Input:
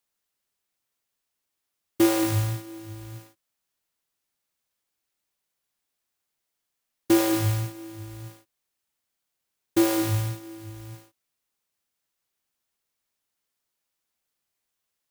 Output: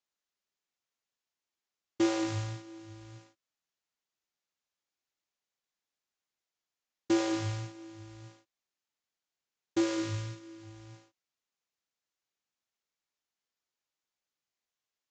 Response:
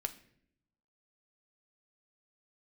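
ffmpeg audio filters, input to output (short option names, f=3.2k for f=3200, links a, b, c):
-filter_complex "[0:a]asettb=1/sr,asplit=3[a][b][c];[a]atrim=end=9.804[d];[b]atrim=start=9.8:end=10.63,asetpts=PTS-STARTPTS,afade=t=in:d=0.004:c=qsin,afade=t=out:st=0.826:d=0.004:c=qsin,equalizer=f=770:w=5.5:g=-13[e];[c]atrim=start=10.626[f];[d][e]acrossfade=d=0.004:c1=hsin:c2=qsin[g];[g][f]acrossfade=d=0.004:c1=qsin:c2=hsin,aresample=16000,aresample=44100,lowshelf=f=140:g=-6.5,volume=-6.5dB"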